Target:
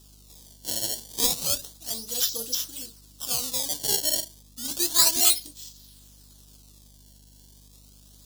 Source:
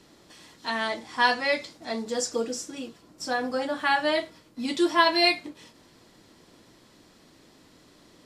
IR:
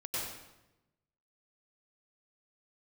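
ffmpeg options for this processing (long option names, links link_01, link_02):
-af "acrusher=samples=20:mix=1:aa=0.000001:lfo=1:lforange=32:lforate=0.31,aexciter=amount=8.6:drive=8.9:freq=3300,aeval=exprs='val(0)+0.00891*(sin(2*PI*50*n/s)+sin(2*PI*2*50*n/s)/2+sin(2*PI*3*50*n/s)/3+sin(2*PI*4*50*n/s)/4+sin(2*PI*5*50*n/s)/5)':channel_layout=same,volume=-12.5dB"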